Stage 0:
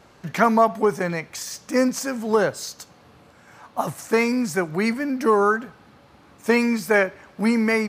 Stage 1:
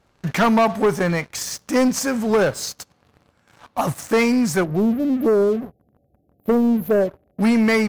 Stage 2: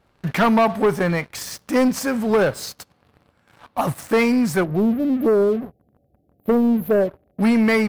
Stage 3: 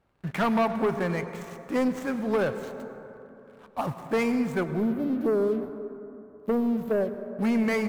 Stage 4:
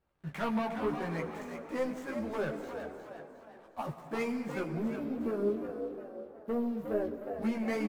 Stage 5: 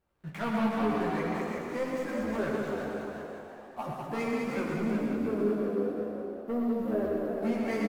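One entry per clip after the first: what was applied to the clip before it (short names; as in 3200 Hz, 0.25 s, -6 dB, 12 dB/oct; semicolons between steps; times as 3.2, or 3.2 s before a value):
spectral delete 4.64–7.41, 780–11000 Hz; low shelf 86 Hz +11.5 dB; sample leveller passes 3; gain -6.5 dB
bell 6500 Hz -7 dB 0.68 oct
median filter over 9 samples; plate-style reverb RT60 3.3 s, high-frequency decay 0.3×, pre-delay 80 ms, DRR 10 dB; gain -8 dB
chorus voices 6, 0.73 Hz, delay 16 ms, depth 3.5 ms; on a send: frequency-shifting echo 0.359 s, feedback 43%, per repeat +76 Hz, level -8 dB; on the sum: gain -5.5 dB
bouncing-ball echo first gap 0.2 s, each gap 0.9×, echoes 5; wow and flutter 28 cents; non-linear reverb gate 0.15 s rising, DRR 2.5 dB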